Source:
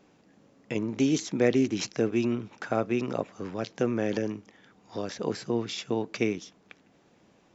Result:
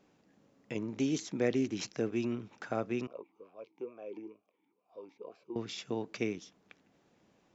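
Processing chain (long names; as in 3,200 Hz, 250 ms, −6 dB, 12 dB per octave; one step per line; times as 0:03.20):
0:03.07–0:05.56: formant filter swept between two vowels a-u 2.2 Hz
level −7 dB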